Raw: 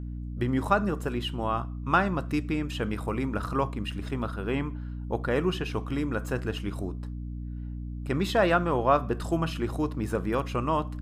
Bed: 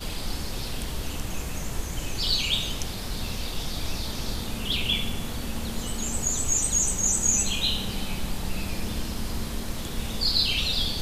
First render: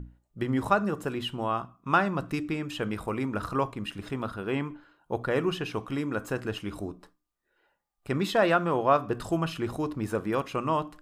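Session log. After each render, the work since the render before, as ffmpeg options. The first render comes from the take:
-af "bandreject=f=60:t=h:w=6,bandreject=f=120:t=h:w=6,bandreject=f=180:t=h:w=6,bandreject=f=240:t=h:w=6,bandreject=f=300:t=h:w=6"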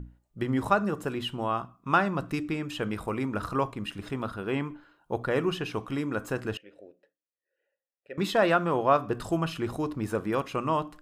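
-filter_complex "[0:a]asettb=1/sr,asplit=3[a][b][c];[a]atrim=end=6.574[d];[b]atrim=start=6.57:end=8.18,asetpts=PTS-STARTPTS,afade=t=in:d=0.004:c=qsin,afade=t=out:st=1.606:d=0.004:c=qsin,asplit=3[e][f][g];[e]bandpass=f=530:t=q:w=8,volume=0dB[h];[f]bandpass=f=1.84k:t=q:w=8,volume=-6dB[i];[g]bandpass=f=2.48k:t=q:w=8,volume=-9dB[j];[h][i][j]amix=inputs=3:normalize=0[k];[c]atrim=start=8.176[l];[d][k]acrossfade=d=0.004:c1=hsin:c2=qsin[m];[m][l]acrossfade=d=0.004:c1=qsin:c2=hsin"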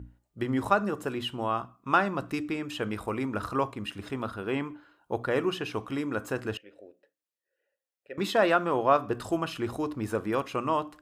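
-af "highpass=61,equalizer=f=160:t=o:w=0.38:g=-8.5"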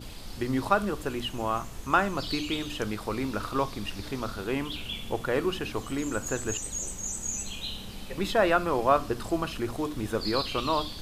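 -filter_complex "[1:a]volume=-10.5dB[a];[0:a][a]amix=inputs=2:normalize=0"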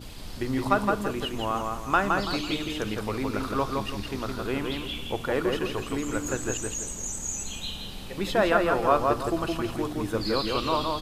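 -filter_complex "[0:a]asplit=2[a][b];[b]adelay=166,lowpass=f=4k:p=1,volume=-3dB,asplit=2[c][d];[d]adelay=166,lowpass=f=4k:p=1,volume=0.33,asplit=2[e][f];[f]adelay=166,lowpass=f=4k:p=1,volume=0.33,asplit=2[g][h];[h]adelay=166,lowpass=f=4k:p=1,volume=0.33[i];[a][c][e][g][i]amix=inputs=5:normalize=0"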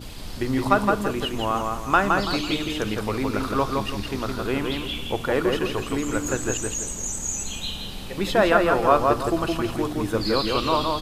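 -af "volume=4dB"

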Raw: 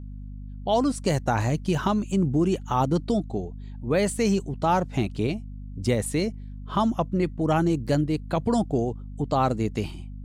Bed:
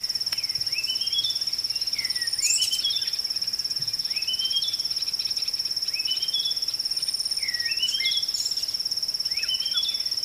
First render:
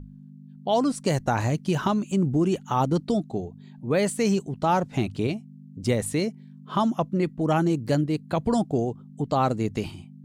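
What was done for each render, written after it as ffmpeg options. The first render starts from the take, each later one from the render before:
-af "bandreject=f=50:t=h:w=6,bandreject=f=100:t=h:w=6"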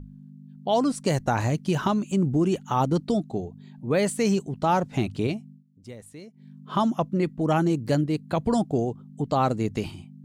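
-filter_complex "[0:a]asplit=3[a][b][c];[a]atrim=end=5.64,asetpts=PTS-STARTPTS,afade=t=out:st=5.49:d=0.15:silence=0.125893[d];[b]atrim=start=5.64:end=6.33,asetpts=PTS-STARTPTS,volume=-18dB[e];[c]atrim=start=6.33,asetpts=PTS-STARTPTS,afade=t=in:d=0.15:silence=0.125893[f];[d][e][f]concat=n=3:v=0:a=1"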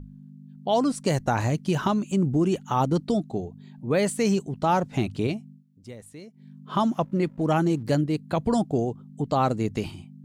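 -filter_complex "[0:a]asettb=1/sr,asplit=3[a][b][c];[a]atrim=end=6.774[d];[b]atrim=start=6.77:end=7.83,asetpts=PTS-STARTPTS,afade=t=in:d=0.004:c=qsin,afade=t=out:st=1.056:d=0.004:c=qsin,aeval=exprs='sgn(val(0))*max(abs(val(0))-0.0015,0)':c=same[e];[c]atrim=start=7.826[f];[d][e]acrossfade=d=0.004:c1=hsin:c2=qsin[g];[g][f]acrossfade=d=0.004:c1=qsin:c2=hsin"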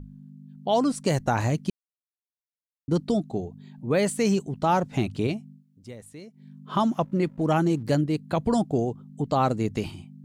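-filter_complex "[0:a]asplit=3[a][b][c];[a]atrim=end=1.7,asetpts=PTS-STARTPTS,afade=t=out:st=1.696:d=0.004:c=hsin[d];[b]atrim=start=1.7:end=2.88,asetpts=PTS-STARTPTS,volume=0[e];[c]atrim=start=2.88,asetpts=PTS-STARTPTS,afade=t=in:d=0.004:c=hsin[f];[d][e][f]concat=n=3:v=0:a=1"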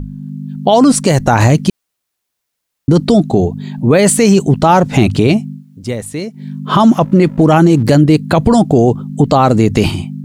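-af "dynaudnorm=f=170:g=3:m=3.5dB,alimiter=level_in=18dB:limit=-1dB:release=50:level=0:latency=1"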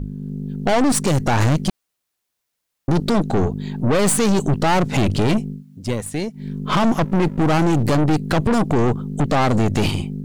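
-af "aeval=exprs='(tanh(5.01*val(0)+0.6)-tanh(0.6))/5.01':c=same"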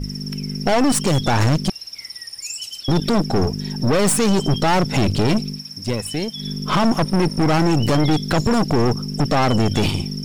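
-filter_complex "[1:a]volume=-7.5dB[a];[0:a][a]amix=inputs=2:normalize=0"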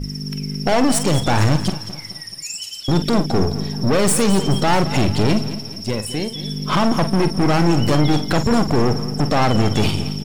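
-filter_complex "[0:a]asplit=2[a][b];[b]adelay=47,volume=-10.5dB[c];[a][c]amix=inputs=2:normalize=0,aecho=1:1:215|430|645|860:0.2|0.0898|0.0404|0.0182"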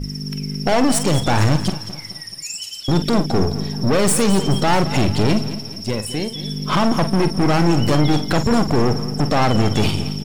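-af anull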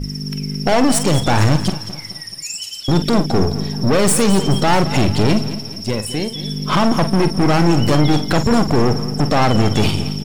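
-af "volume=2dB"

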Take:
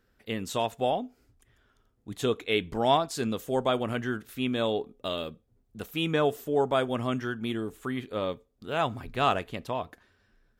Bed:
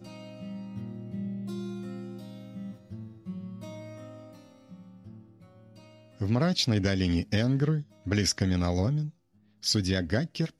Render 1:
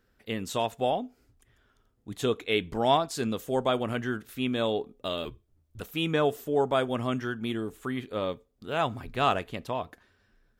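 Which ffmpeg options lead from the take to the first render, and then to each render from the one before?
-filter_complex "[0:a]asettb=1/sr,asplit=3[a][b][c];[a]atrim=end=5.254[d];[b]atrim=start=5.25:end=5.81,asetpts=PTS-STARTPTS,afade=t=in:d=0.004:c=qsin,afade=t=out:st=0.556:d=0.004:c=qsin,afreqshift=-110[e];[c]atrim=start=5.806[f];[d][e]acrossfade=d=0.004:c1=hsin:c2=qsin[g];[g][f]acrossfade=d=0.004:c1=qsin:c2=hsin"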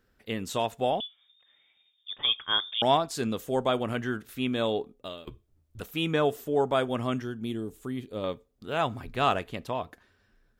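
-filter_complex "[0:a]asettb=1/sr,asplit=3[a][b][c];[a]atrim=end=1.004[d];[b]atrim=start=1:end=2.82,asetpts=PTS-STARTPTS,afade=t=in:d=0.004:c=qsin,afade=t=out:st=1.816:d=0.004:c=qsin,lowpass=f=3.1k:t=q:w=0.5098,lowpass=f=3.1k:t=q:w=0.6013,lowpass=f=3.1k:t=q:w=0.9,lowpass=f=3.1k:t=q:w=2.563,afreqshift=-3700[e];[c]atrim=start=2.816[f];[d][e]acrossfade=d=0.004:c1=hsin:c2=qsin[g];[g][f]acrossfade=d=0.004:c1=qsin:c2=hsin,asettb=1/sr,asplit=3[h][i][j];[h]atrim=end=7.224[k];[i]atrim=start=7.22:end=8.24,asetpts=PTS-STARTPTS,afade=t=in:d=0.004:c=qsin,afade=t=out:st=1.016:d=0.004:c=qsin,equalizer=f=1.5k:t=o:w=2.2:g=-10.5[l];[j]atrim=start=8.236[m];[k][l]acrossfade=d=0.004:c1=hsin:c2=qsin[n];[n][m]acrossfade=d=0.004:c1=qsin:c2=hsin,asplit=2[o][p];[o]atrim=end=5.27,asetpts=PTS-STARTPTS,afade=t=out:st=4.8:d=0.47:silence=0.125893[q];[p]atrim=start=5.27,asetpts=PTS-STARTPTS,afade=t=in:d=0.004:c=hsin:silence=0.125893[r];[q][r]concat=n=2:v=0:a=1"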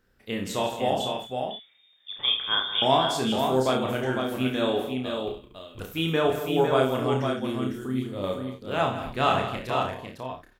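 -filter_complex "[0:a]asplit=2[a][b];[b]adelay=31,volume=-4dB[c];[a][c]amix=inputs=2:normalize=0,asplit=2[d][e];[e]aecho=0:1:54|69|163|234|504|559:0.237|0.299|0.266|0.188|0.531|0.2[f];[d][f]amix=inputs=2:normalize=0"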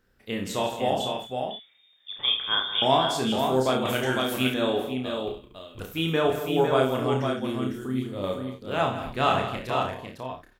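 -filter_complex "[0:a]asettb=1/sr,asplit=3[a][b][c];[a]atrim=end=3.854[d];[b]atrim=start=3.85:end=4.54,asetpts=PTS-STARTPTS,afade=t=in:d=0.004:c=qsin,afade=t=out:st=0.686:d=0.004:c=qsin,highshelf=f=2k:g=10.5[e];[c]atrim=start=4.536[f];[d][e]acrossfade=d=0.004:c1=hsin:c2=qsin[g];[g][f]acrossfade=d=0.004:c1=qsin:c2=hsin"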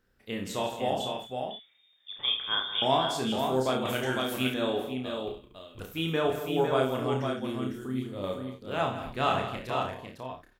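-af "volume=-4dB"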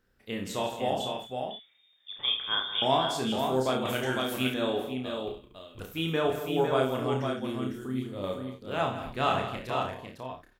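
-af anull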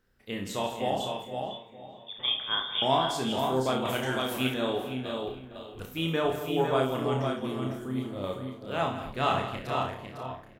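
-filter_complex "[0:a]asplit=2[a][b];[b]adelay=30,volume=-12.5dB[c];[a][c]amix=inputs=2:normalize=0,asplit=2[d][e];[e]adelay=459,lowpass=f=2.2k:p=1,volume=-13.5dB,asplit=2[f][g];[g]adelay=459,lowpass=f=2.2k:p=1,volume=0.51,asplit=2[h][i];[i]adelay=459,lowpass=f=2.2k:p=1,volume=0.51,asplit=2[j][k];[k]adelay=459,lowpass=f=2.2k:p=1,volume=0.51,asplit=2[l][m];[m]adelay=459,lowpass=f=2.2k:p=1,volume=0.51[n];[d][f][h][j][l][n]amix=inputs=6:normalize=0"

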